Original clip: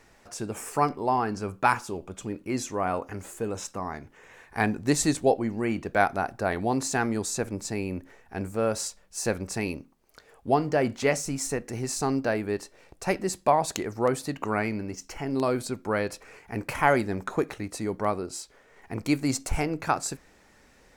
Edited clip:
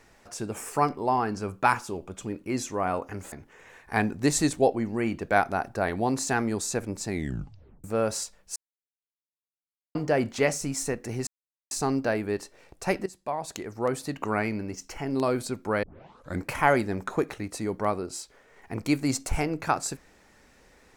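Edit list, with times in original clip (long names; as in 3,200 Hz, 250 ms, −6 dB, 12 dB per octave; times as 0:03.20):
0:03.32–0:03.96: remove
0:07.71: tape stop 0.77 s
0:09.20–0:10.59: silence
0:11.91: splice in silence 0.44 s
0:13.26–0:14.44: fade in linear, from −17.5 dB
0:16.03: tape start 0.63 s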